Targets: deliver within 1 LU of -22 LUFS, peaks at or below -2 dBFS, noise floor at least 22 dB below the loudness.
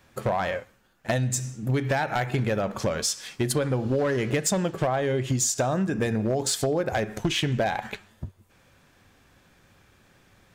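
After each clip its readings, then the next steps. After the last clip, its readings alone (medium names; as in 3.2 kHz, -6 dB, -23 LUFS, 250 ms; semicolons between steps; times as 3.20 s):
clipped samples 0.6%; clipping level -17.5 dBFS; loudness -26.0 LUFS; peak level -17.5 dBFS; loudness target -22.0 LUFS
-> clip repair -17.5 dBFS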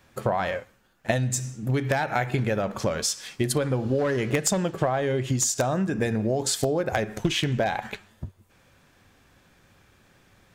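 clipped samples 0.0%; loudness -26.0 LUFS; peak level -8.5 dBFS; loudness target -22.0 LUFS
-> trim +4 dB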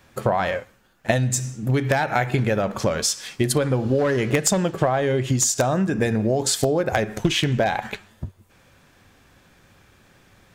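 loudness -22.0 LUFS; peak level -4.5 dBFS; noise floor -56 dBFS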